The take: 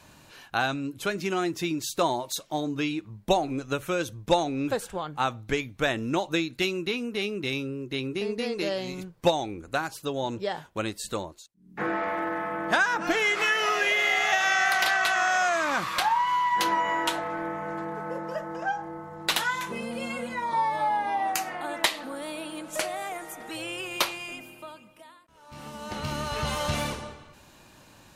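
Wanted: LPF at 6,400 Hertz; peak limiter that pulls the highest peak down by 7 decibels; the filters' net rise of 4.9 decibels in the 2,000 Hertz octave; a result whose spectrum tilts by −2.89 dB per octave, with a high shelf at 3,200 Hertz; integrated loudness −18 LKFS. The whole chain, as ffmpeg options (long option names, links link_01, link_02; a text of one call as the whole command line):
ffmpeg -i in.wav -af "lowpass=6400,equalizer=frequency=2000:width_type=o:gain=4,highshelf=frequency=3200:gain=7,volume=7.5dB,alimiter=limit=-4.5dB:level=0:latency=1" out.wav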